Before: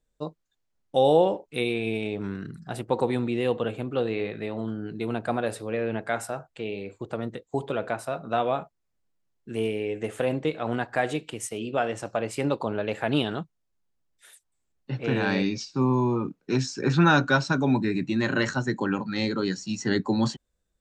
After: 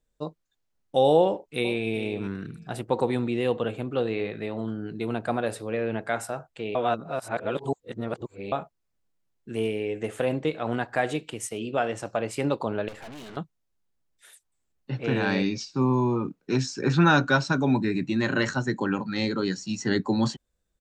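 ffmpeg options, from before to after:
-filter_complex "[0:a]asplit=2[a][b];[b]afade=t=in:st=1.24:d=0.01,afade=t=out:st=1.87:d=0.01,aecho=0:1:400|800:0.223872|0.0223872[c];[a][c]amix=inputs=2:normalize=0,asettb=1/sr,asplit=3[d][e][f];[d]atrim=end=12.884[g];[e]atrim=start=12.88:end=13.37,asetpts=PTS-STARTPTS,afade=t=in:d=0.004:c=qsin,afade=t=out:st=0.486:d=0.004:c=qsin,aeval=exprs='(tanh(100*val(0)+0.65)-tanh(0.65))/100':c=same[h];[f]atrim=start=13.366[i];[g][h]acrossfade=d=0.004:c1=hsin:c2=qsin[j];[j][i]acrossfade=d=0.004:c1=qsin:c2=hsin,asplit=3[k][l][m];[k]atrim=end=6.752[n];[l]atrim=start=6.748:end=8.522,asetpts=PTS-STARTPTS,areverse[o];[m]atrim=start=8.518[p];[n][o]acrossfade=d=0.004:c1=hsin:c2=hsin[q];[q][p]acrossfade=d=0.004:c1=hsin:c2=hsin"

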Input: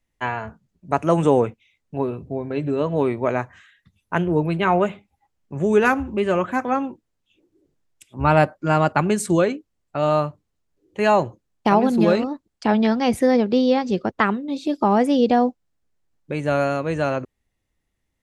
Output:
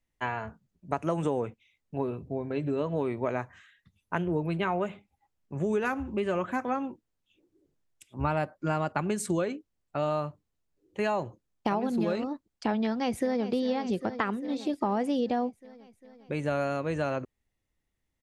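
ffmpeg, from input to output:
-filter_complex "[0:a]asplit=2[a][b];[b]afade=t=in:st=12.84:d=0.01,afade=t=out:st=13.47:d=0.01,aecho=0:1:400|800|1200|1600|2000|2400|2800|3200|3600:0.211349|0.147944|0.103561|0.0724927|0.0507449|0.0355214|0.024865|0.0174055|0.0121838[c];[a][c]amix=inputs=2:normalize=0,acompressor=threshold=-19dB:ratio=6,volume=-5.5dB"

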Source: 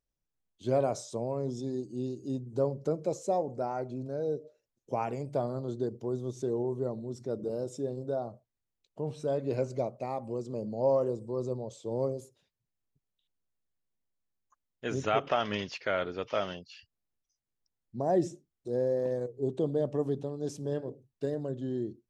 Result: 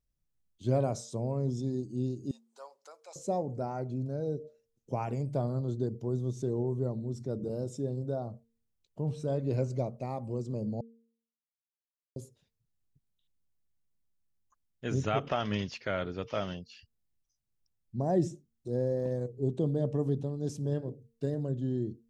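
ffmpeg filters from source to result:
-filter_complex "[0:a]asettb=1/sr,asplit=3[a][b][c];[a]atrim=end=2.314[d];[b]atrim=start=2.31:end=3.16,asetpts=PTS-STARTPTS,afade=t=in:d=0.004:c=qsin,afade=t=out:st=0.846:d=0.004:c=qsin,highpass=f=900:w=0.5412,highpass=f=900:w=1.3066[e];[c]atrim=start=3.156[f];[d][e]acrossfade=d=0.004:c1=hsin:c2=qsin[g];[g][f]acrossfade=d=0.004:c1=qsin:c2=hsin,asplit=3[h][i][j];[h]atrim=end=10.81,asetpts=PTS-STARTPTS,afade=t=out:st=10.806:d=0.004:c=hsin[k];[i]atrim=start=10.81:end=12.16,asetpts=PTS-STARTPTS,volume=0[l];[j]atrim=start=12.16,asetpts=PTS-STARTPTS,afade=t=in:d=0.004:c=hsin[m];[k][l][m]concat=n=3:v=0:a=1,bass=f=250:g=11,treble=f=4k:g=3,bandreject=f=229.1:t=h:w=4,bandreject=f=458.2:t=h:w=4,volume=-3.5dB"

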